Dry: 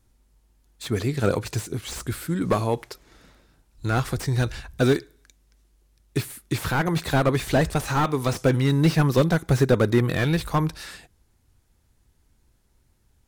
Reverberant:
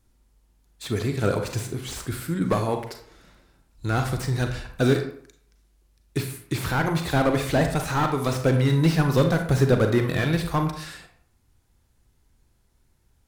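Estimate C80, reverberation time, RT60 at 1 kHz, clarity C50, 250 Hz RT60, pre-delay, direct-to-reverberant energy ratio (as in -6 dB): 11.0 dB, 0.60 s, 0.60 s, 7.5 dB, 0.55 s, 33 ms, 5.0 dB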